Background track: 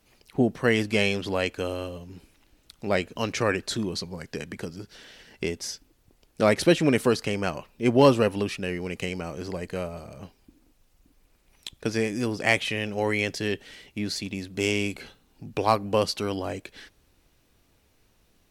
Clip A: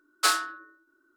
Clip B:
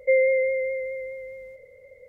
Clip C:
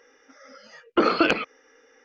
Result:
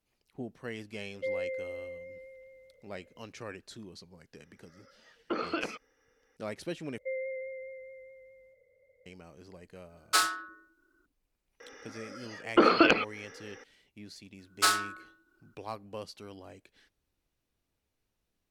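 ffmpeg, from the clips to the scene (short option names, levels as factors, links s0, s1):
-filter_complex "[2:a]asplit=2[s0][s1];[3:a]asplit=2[s2][s3];[1:a]asplit=2[s4][s5];[0:a]volume=0.126[s6];[s3]acompressor=mode=upward:threshold=0.0112:ratio=2.5:attack=3.2:release=140:knee=2.83:detection=peak[s7];[s6]asplit=2[s8][s9];[s8]atrim=end=6.984[s10];[s1]atrim=end=2.08,asetpts=PTS-STARTPTS,volume=0.15[s11];[s9]atrim=start=9.056[s12];[s0]atrim=end=2.08,asetpts=PTS-STARTPTS,volume=0.188,afade=t=in:d=0.004:c=hsin,afade=t=out:st=2.076:d=0.004:c=hsin,adelay=1150[s13];[s2]atrim=end=2.04,asetpts=PTS-STARTPTS,volume=0.211,afade=t=in:d=0.004:c=hsin,afade=t=out:st=2.036:d=0.004:c=hsin,adelay=190953S[s14];[s4]atrim=end=1.16,asetpts=PTS-STARTPTS,volume=0.75,afade=t=in:d=0.004:c=hsin,afade=t=out:st=1.156:d=0.004:c=hsin,adelay=9900[s15];[s7]atrim=end=2.04,asetpts=PTS-STARTPTS,volume=0.841,afade=t=in:d=0.004:c=hsin,afade=t=out:st=2.036:d=0.004:c=hsin,adelay=11600[s16];[s5]atrim=end=1.16,asetpts=PTS-STARTPTS,volume=0.794,afade=t=in:d=0.004:c=hsin,afade=t=out:st=1.156:d=0.004:c=hsin,adelay=14390[s17];[s10][s11]acrossfade=d=0.004:c1=hsin:c2=hsin[s18];[s18][s12]acrossfade=d=0.004:c1=hsin:c2=hsin[s19];[s19][s13][s14][s15][s16][s17]amix=inputs=6:normalize=0"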